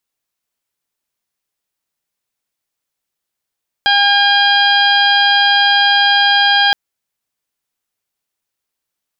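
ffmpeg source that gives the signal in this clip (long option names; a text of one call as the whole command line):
ffmpeg -f lavfi -i "aevalsrc='0.188*sin(2*PI*808*t)+0.224*sin(2*PI*1616*t)+0.0596*sin(2*PI*2424*t)+0.211*sin(2*PI*3232*t)+0.075*sin(2*PI*4040*t)+0.0944*sin(2*PI*4848*t)':duration=2.87:sample_rate=44100" out.wav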